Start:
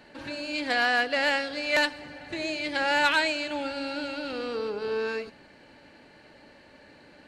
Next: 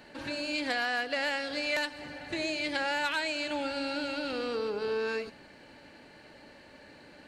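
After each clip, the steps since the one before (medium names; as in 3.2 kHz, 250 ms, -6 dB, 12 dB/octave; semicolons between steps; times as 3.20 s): treble shelf 7 kHz +4.5 dB; compression 5:1, threshold -28 dBFS, peak gain reduction 9 dB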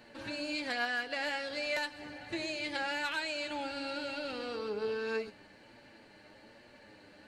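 flange 1.2 Hz, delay 8.3 ms, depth 1.8 ms, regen +41%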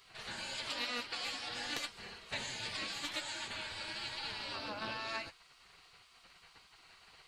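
spectral gate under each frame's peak -15 dB weak; loudspeaker Doppler distortion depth 0.14 ms; trim +5.5 dB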